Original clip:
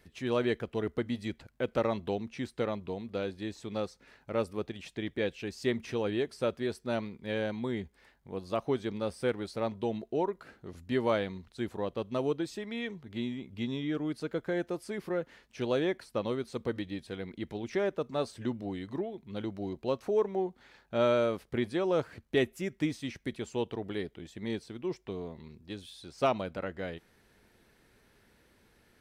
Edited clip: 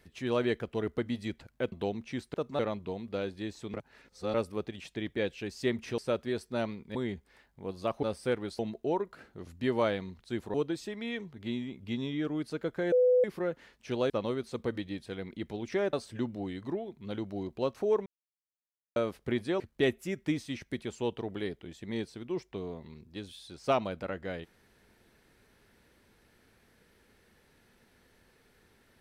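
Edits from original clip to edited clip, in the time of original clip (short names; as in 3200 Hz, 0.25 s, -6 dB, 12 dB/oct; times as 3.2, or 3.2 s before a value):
1.72–1.98 cut
3.75–4.35 reverse
5.99–6.32 cut
7.29–7.63 cut
8.71–9 cut
9.56–9.87 cut
11.82–12.24 cut
14.62–14.94 bleep 500 Hz -20 dBFS
15.8–16.11 cut
17.94–18.19 move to 2.6
20.32–21.22 mute
21.86–22.14 cut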